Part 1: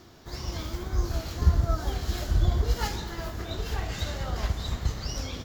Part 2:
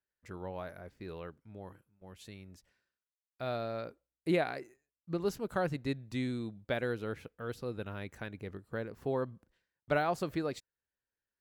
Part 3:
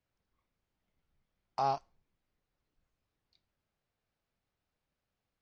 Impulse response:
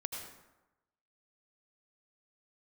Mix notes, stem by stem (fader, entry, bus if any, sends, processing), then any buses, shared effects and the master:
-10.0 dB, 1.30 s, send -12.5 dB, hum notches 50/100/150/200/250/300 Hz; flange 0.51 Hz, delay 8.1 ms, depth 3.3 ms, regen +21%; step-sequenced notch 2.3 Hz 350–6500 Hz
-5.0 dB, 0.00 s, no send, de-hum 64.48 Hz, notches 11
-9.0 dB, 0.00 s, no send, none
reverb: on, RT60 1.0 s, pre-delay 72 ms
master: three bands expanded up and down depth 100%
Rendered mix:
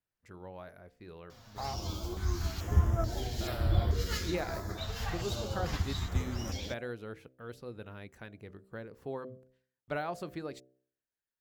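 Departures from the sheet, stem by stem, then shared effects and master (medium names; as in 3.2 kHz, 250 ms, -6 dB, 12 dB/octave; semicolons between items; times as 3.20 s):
stem 1 -10.0 dB -> 0.0 dB; master: missing three bands expanded up and down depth 100%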